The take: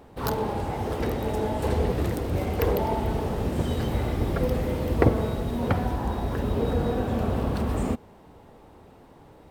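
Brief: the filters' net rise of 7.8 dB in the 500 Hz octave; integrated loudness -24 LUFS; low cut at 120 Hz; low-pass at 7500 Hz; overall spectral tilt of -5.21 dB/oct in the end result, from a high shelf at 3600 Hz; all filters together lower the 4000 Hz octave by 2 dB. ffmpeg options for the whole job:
-af "highpass=120,lowpass=7.5k,equalizer=f=500:t=o:g=9,highshelf=f=3.6k:g=7,equalizer=f=4k:t=o:g=-7,volume=-1dB"

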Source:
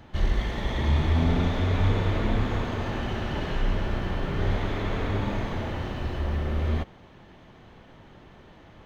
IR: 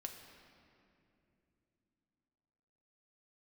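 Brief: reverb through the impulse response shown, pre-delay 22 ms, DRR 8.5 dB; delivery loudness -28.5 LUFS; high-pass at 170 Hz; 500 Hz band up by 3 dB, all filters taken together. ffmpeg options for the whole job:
-filter_complex "[0:a]highpass=170,equalizer=f=500:t=o:g=4,asplit=2[a][b];[1:a]atrim=start_sample=2205,adelay=22[c];[b][c]afir=irnorm=-1:irlink=0,volume=-5dB[d];[a][d]amix=inputs=2:normalize=0,volume=1.5dB"

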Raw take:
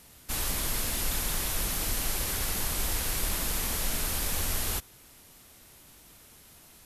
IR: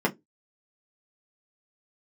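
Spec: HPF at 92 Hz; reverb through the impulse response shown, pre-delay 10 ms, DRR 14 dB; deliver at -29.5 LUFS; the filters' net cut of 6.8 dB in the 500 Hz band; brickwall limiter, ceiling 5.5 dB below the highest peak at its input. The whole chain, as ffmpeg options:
-filter_complex "[0:a]highpass=92,equalizer=f=500:t=o:g=-9,alimiter=level_in=0.5dB:limit=-24dB:level=0:latency=1,volume=-0.5dB,asplit=2[a][b];[1:a]atrim=start_sample=2205,adelay=10[c];[b][c]afir=irnorm=-1:irlink=0,volume=-26.5dB[d];[a][d]amix=inputs=2:normalize=0,volume=2.5dB"

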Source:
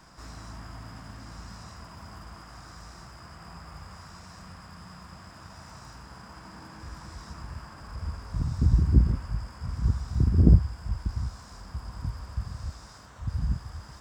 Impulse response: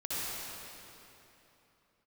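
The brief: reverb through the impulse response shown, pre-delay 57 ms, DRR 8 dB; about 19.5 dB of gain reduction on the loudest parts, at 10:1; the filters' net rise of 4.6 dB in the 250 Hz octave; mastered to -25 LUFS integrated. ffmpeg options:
-filter_complex "[0:a]equalizer=f=250:t=o:g=6.5,acompressor=threshold=-29dB:ratio=10,asplit=2[a][b];[1:a]atrim=start_sample=2205,adelay=57[c];[b][c]afir=irnorm=-1:irlink=0,volume=-14dB[d];[a][d]amix=inputs=2:normalize=0,volume=14dB"

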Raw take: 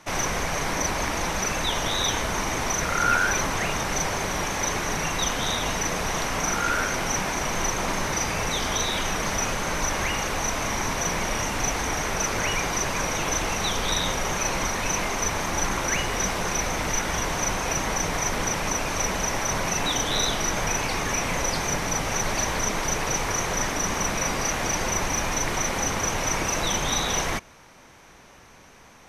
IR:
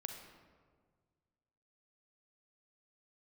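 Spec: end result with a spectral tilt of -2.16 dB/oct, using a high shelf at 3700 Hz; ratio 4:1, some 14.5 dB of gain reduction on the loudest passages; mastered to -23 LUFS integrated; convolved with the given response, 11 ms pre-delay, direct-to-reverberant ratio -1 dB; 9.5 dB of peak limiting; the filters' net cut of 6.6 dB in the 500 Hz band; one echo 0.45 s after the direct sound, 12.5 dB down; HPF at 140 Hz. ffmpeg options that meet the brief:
-filter_complex "[0:a]highpass=140,equalizer=f=500:t=o:g=-8.5,highshelf=f=3.7k:g=-4.5,acompressor=threshold=-37dB:ratio=4,alimiter=level_in=9.5dB:limit=-24dB:level=0:latency=1,volume=-9.5dB,aecho=1:1:450:0.237,asplit=2[a][b];[1:a]atrim=start_sample=2205,adelay=11[c];[b][c]afir=irnorm=-1:irlink=0,volume=3dB[d];[a][d]amix=inputs=2:normalize=0,volume=14.5dB"

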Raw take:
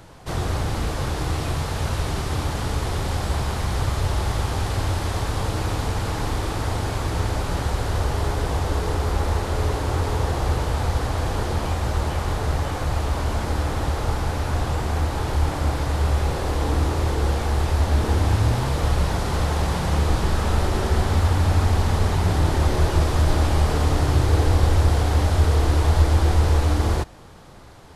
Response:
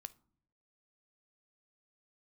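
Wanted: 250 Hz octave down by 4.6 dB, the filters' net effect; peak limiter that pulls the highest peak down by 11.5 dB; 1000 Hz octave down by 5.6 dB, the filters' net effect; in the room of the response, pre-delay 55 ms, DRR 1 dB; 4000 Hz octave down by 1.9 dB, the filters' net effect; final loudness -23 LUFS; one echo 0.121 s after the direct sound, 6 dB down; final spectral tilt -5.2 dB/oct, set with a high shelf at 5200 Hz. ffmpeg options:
-filter_complex "[0:a]equalizer=f=250:t=o:g=-6.5,equalizer=f=1k:t=o:g=-7,equalizer=f=4k:t=o:g=-5.5,highshelf=f=5.2k:g=7.5,alimiter=limit=-17dB:level=0:latency=1,aecho=1:1:121:0.501,asplit=2[a][b];[1:a]atrim=start_sample=2205,adelay=55[c];[b][c]afir=irnorm=-1:irlink=0,volume=4.5dB[d];[a][d]amix=inputs=2:normalize=0,volume=-1dB"

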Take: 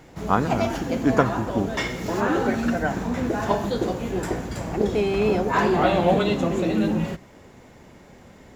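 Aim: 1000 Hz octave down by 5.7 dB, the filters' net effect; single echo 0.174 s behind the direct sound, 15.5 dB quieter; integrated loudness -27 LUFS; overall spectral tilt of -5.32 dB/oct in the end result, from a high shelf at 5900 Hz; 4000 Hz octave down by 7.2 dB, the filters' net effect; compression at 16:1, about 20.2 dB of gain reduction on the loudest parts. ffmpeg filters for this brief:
-af "equalizer=f=1k:t=o:g=-7.5,equalizer=f=4k:t=o:g=-7.5,highshelf=f=5.9k:g=-5,acompressor=threshold=-36dB:ratio=16,aecho=1:1:174:0.168,volume=14dB"

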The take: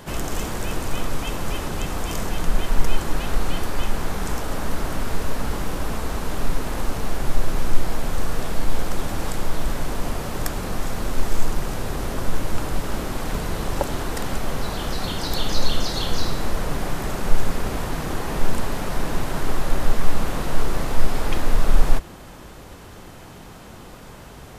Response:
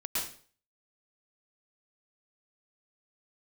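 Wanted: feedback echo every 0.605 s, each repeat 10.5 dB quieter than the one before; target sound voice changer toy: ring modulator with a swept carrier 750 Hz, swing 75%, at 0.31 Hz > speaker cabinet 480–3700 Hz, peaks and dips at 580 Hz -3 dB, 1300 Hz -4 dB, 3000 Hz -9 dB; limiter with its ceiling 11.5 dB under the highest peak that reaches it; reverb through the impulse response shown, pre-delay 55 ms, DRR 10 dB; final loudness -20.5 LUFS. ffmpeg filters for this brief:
-filter_complex "[0:a]alimiter=limit=-13dB:level=0:latency=1,aecho=1:1:605|1210|1815:0.299|0.0896|0.0269,asplit=2[a][b];[1:a]atrim=start_sample=2205,adelay=55[c];[b][c]afir=irnorm=-1:irlink=0,volume=-15.5dB[d];[a][d]amix=inputs=2:normalize=0,aeval=exprs='val(0)*sin(2*PI*750*n/s+750*0.75/0.31*sin(2*PI*0.31*n/s))':c=same,highpass=480,equalizer=f=580:t=q:w=4:g=-3,equalizer=f=1.3k:t=q:w=4:g=-4,equalizer=f=3k:t=q:w=4:g=-9,lowpass=f=3.7k:w=0.5412,lowpass=f=3.7k:w=1.3066,volume=6dB"

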